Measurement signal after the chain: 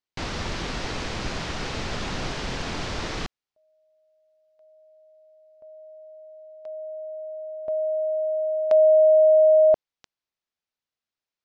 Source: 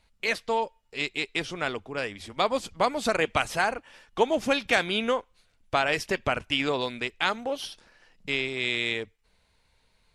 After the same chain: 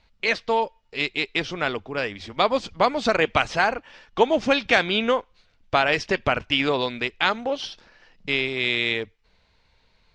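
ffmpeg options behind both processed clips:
-af "lowpass=f=5.8k:w=0.5412,lowpass=f=5.8k:w=1.3066,volume=4.5dB"

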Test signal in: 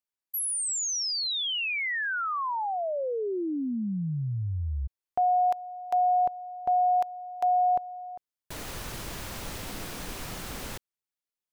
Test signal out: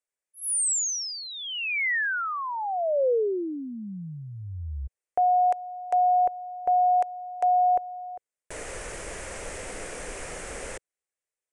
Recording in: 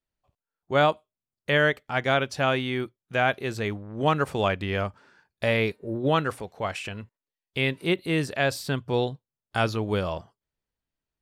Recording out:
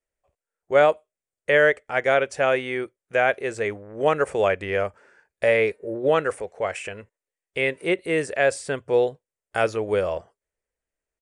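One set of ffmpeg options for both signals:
-af "aresample=22050,aresample=44100,equalizer=f=125:t=o:w=1:g=-8,equalizer=f=250:t=o:w=1:g=-6,equalizer=f=500:t=o:w=1:g=10,equalizer=f=1k:t=o:w=1:g=-4,equalizer=f=2k:t=o:w=1:g=7,equalizer=f=4k:t=o:w=1:g=-11,equalizer=f=8k:t=o:w=1:g=7"

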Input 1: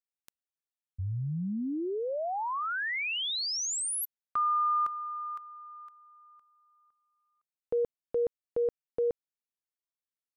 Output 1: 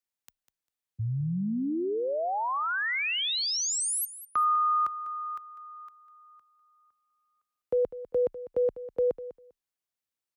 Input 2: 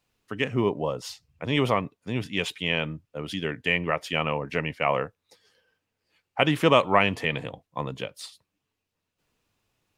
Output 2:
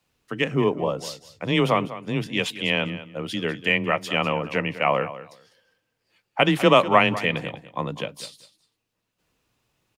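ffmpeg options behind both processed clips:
-af "afreqshift=18,aecho=1:1:199|398:0.188|0.0301,volume=3dB"

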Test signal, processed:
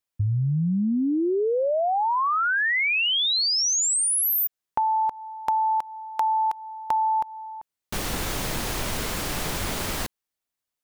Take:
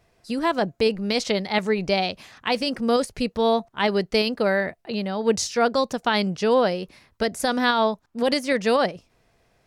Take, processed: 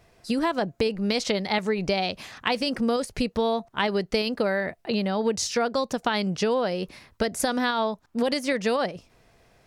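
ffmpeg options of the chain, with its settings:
-af "acompressor=threshold=-26dB:ratio=6,volume=4.5dB"

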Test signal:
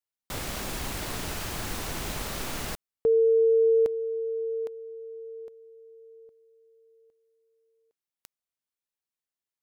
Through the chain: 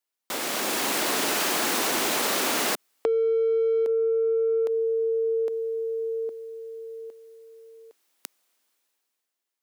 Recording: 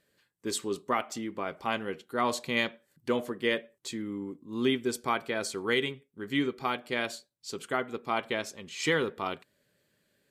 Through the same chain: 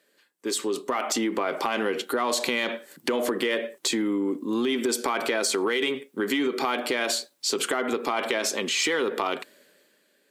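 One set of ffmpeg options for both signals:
-filter_complex "[0:a]asplit=2[a][b];[b]asoftclip=type=tanh:threshold=-30dB,volume=-7dB[c];[a][c]amix=inputs=2:normalize=0,alimiter=limit=-21dB:level=0:latency=1,dynaudnorm=f=110:g=17:m=16dB,highpass=f=250:w=0.5412,highpass=f=250:w=1.3066,acompressor=threshold=-27dB:ratio=6:attack=8.3:release=48:knee=6:detection=rms,volume=3dB"

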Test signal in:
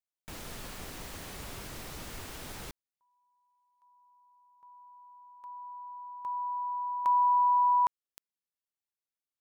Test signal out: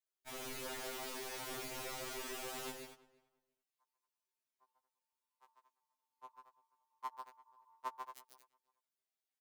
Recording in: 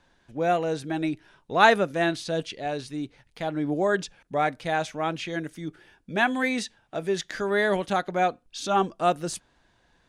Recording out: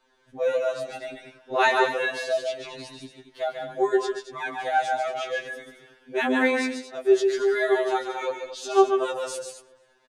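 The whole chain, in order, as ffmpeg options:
-filter_complex "[0:a]lowshelf=f=240:t=q:w=1.5:g=-10.5,asplit=2[a][b];[b]aecho=0:1:142.9|227.4:0.562|0.282[c];[a][c]amix=inputs=2:normalize=0,flanger=delay=4.5:depth=3.7:regen=-29:speed=0.89:shape=sinusoidal,asplit=2[d][e];[e]adelay=341,lowpass=f=2.3k:p=1,volume=-22dB,asplit=2[f][g];[g]adelay=341,lowpass=f=2.3k:p=1,volume=0.18[h];[f][h]amix=inputs=2:normalize=0[i];[d][i]amix=inputs=2:normalize=0,afftfilt=real='re*2.45*eq(mod(b,6),0)':imag='im*2.45*eq(mod(b,6),0)':win_size=2048:overlap=0.75,volume=4dB"

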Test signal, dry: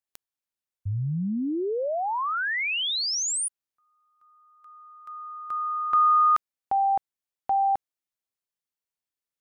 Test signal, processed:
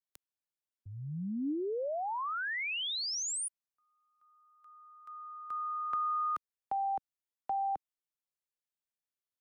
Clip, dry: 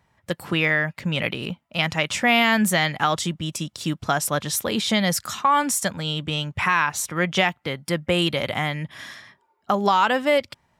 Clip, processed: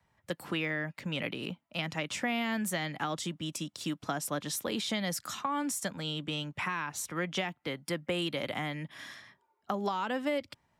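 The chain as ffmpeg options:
-filter_complex "[0:a]adynamicequalizer=threshold=0.00794:dfrequency=290:dqfactor=5:tfrequency=290:tqfactor=5:attack=5:release=100:ratio=0.375:range=2.5:mode=boostabove:tftype=bell,acrossover=split=140|450[a][b][c];[a]acompressor=threshold=-52dB:ratio=4[d];[b]acompressor=threshold=-26dB:ratio=4[e];[c]acompressor=threshold=-25dB:ratio=4[f];[d][e][f]amix=inputs=3:normalize=0,volume=-7.5dB"

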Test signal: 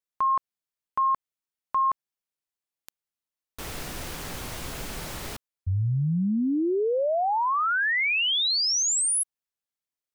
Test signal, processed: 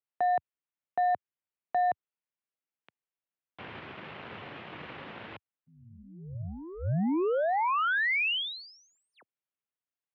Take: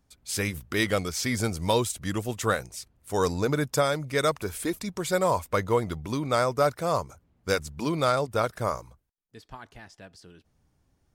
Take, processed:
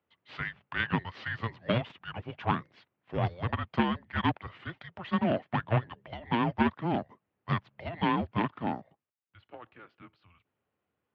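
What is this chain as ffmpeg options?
-af "aeval=exprs='0.316*(cos(1*acos(clip(val(0)/0.316,-1,1)))-cos(1*PI/2))+0.141*(cos(4*acos(clip(val(0)/0.316,-1,1)))-cos(4*PI/2))+0.1*(cos(6*acos(clip(val(0)/0.316,-1,1)))-cos(6*PI/2))':c=same,highpass=f=310:t=q:w=0.5412,highpass=f=310:t=q:w=1.307,lowpass=f=3.4k:t=q:w=0.5176,lowpass=f=3.4k:t=q:w=0.7071,lowpass=f=3.4k:t=q:w=1.932,afreqshift=-350,highpass=f=92:w=0.5412,highpass=f=92:w=1.3066,volume=-3dB"

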